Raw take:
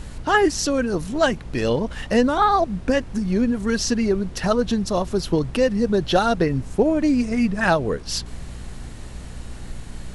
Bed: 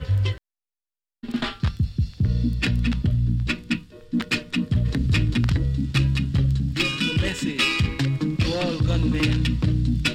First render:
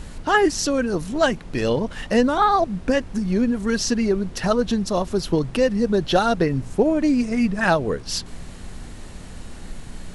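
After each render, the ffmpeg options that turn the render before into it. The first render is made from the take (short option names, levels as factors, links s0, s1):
-af "bandreject=f=60:t=h:w=4,bandreject=f=120:t=h:w=4"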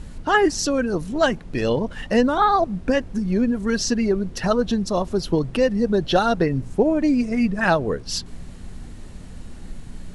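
-af "afftdn=nr=6:nf=-38"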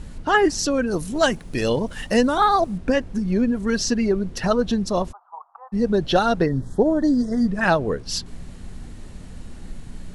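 -filter_complex "[0:a]asettb=1/sr,asplit=3[s0][s1][s2];[s0]atrim=end=0.914[s3];[s1]atrim=start=0.91:end=2.78,asetpts=PTS-STARTPTS,afade=t=in:d=0.004:c=qsin,afade=t=out:st=1.866:d=0.004:c=qsin,aemphasis=mode=production:type=50fm[s4];[s2]atrim=start=2.776[s5];[s3][s4]acrossfade=d=0.004:c1=hsin:c2=qsin[s6];[s6][s5]acrossfade=d=0.004:c1=qsin:c2=hsin,asplit=3[s7][s8][s9];[s7]afade=t=out:st=5.11:d=0.02[s10];[s8]asuperpass=centerf=980:order=8:qfactor=1.9,afade=t=in:st=5.11:d=0.02,afade=t=out:st=5.72:d=0.02[s11];[s9]afade=t=in:st=5.72:d=0.02[s12];[s10][s11][s12]amix=inputs=3:normalize=0,asettb=1/sr,asplit=3[s13][s14][s15];[s13]atrim=end=6.464[s16];[s14]atrim=start=6.46:end=7.48,asetpts=PTS-STARTPTS,afade=t=in:d=0.004:c=qsin,afade=t=out:st=1.016:d=0.004:c=qsin,asuperstop=centerf=2500:order=12:qfactor=2[s17];[s15]atrim=start=7.476[s18];[s16][s17]acrossfade=d=0.004:c1=hsin:c2=qsin[s19];[s19][s18]acrossfade=d=0.004:c1=qsin:c2=hsin"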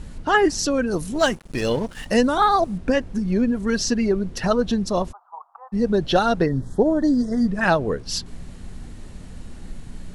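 -filter_complex "[0:a]asettb=1/sr,asplit=3[s0][s1][s2];[s0]atrim=end=1.194[s3];[s1]atrim=start=1.19:end=2.06,asetpts=PTS-STARTPTS,afade=t=in:d=0.004:c=qsin,afade=t=out:st=0.866:d=0.004:c=qsin,aeval=exprs='sgn(val(0))*max(abs(val(0))-0.0112,0)':c=same[s4];[s2]atrim=start=2.056[s5];[s3][s4]acrossfade=d=0.004:c1=hsin:c2=qsin[s6];[s6][s5]acrossfade=d=0.004:c1=qsin:c2=hsin"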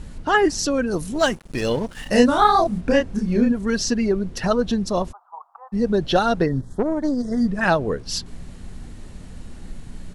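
-filter_complex "[0:a]asplit=3[s0][s1][s2];[s0]afade=t=out:st=2.05:d=0.02[s3];[s1]asplit=2[s4][s5];[s5]adelay=29,volume=0.794[s6];[s4][s6]amix=inputs=2:normalize=0,afade=t=in:st=2.05:d=0.02,afade=t=out:st=3.51:d=0.02[s7];[s2]afade=t=in:st=3.51:d=0.02[s8];[s3][s7][s8]amix=inputs=3:normalize=0,asettb=1/sr,asplit=3[s9][s10][s11];[s9]atrim=end=6.614[s12];[s10]atrim=start=6.61:end=7.25,asetpts=PTS-STARTPTS,afade=t=in:d=0.004:c=qsin,afade=t=out:st=0.636:d=0.004:c=qsin,aeval=exprs='(tanh(4.47*val(0)+0.7)-tanh(0.7))/4.47':c=same[s13];[s11]atrim=start=7.246[s14];[s12][s13]acrossfade=d=0.004:c1=hsin:c2=qsin[s15];[s15][s14]acrossfade=d=0.004:c1=qsin:c2=hsin"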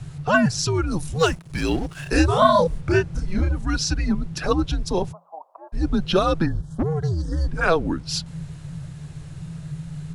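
-filter_complex "[0:a]acrossover=split=430[s0][s1];[s0]asoftclip=type=tanh:threshold=0.141[s2];[s2][s1]amix=inputs=2:normalize=0,afreqshift=-170"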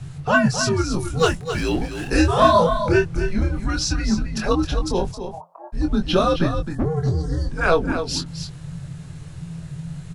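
-filter_complex "[0:a]asplit=2[s0][s1];[s1]adelay=23,volume=0.531[s2];[s0][s2]amix=inputs=2:normalize=0,asplit=2[s3][s4];[s4]aecho=0:1:264:0.355[s5];[s3][s5]amix=inputs=2:normalize=0"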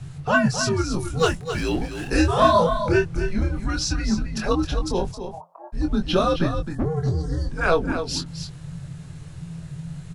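-af "volume=0.794"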